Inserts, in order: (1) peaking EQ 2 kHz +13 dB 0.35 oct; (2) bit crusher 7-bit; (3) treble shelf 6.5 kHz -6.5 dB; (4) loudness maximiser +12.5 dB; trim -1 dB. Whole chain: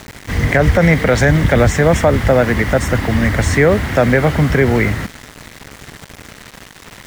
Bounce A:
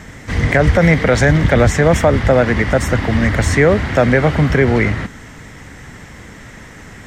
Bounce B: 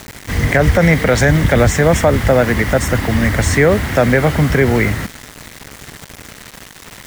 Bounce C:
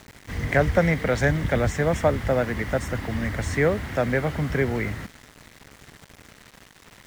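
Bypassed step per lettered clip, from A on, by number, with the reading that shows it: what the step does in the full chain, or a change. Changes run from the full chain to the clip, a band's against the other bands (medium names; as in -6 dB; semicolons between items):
2, distortion -23 dB; 3, 8 kHz band +3.5 dB; 4, crest factor change +6.0 dB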